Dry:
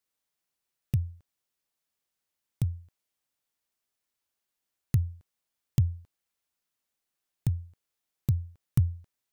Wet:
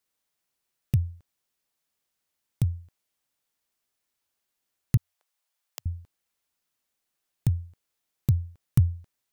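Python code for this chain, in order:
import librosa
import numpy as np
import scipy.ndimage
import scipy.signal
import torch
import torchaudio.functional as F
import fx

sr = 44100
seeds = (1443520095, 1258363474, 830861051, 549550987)

y = fx.highpass(x, sr, hz=560.0, slope=24, at=(4.97, 5.86))
y = y * librosa.db_to_amplitude(3.5)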